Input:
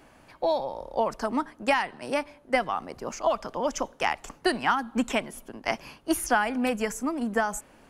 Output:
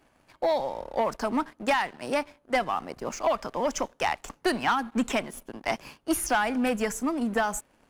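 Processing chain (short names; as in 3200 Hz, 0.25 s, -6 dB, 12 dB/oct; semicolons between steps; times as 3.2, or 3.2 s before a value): sample leveller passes 2; gain -6 dB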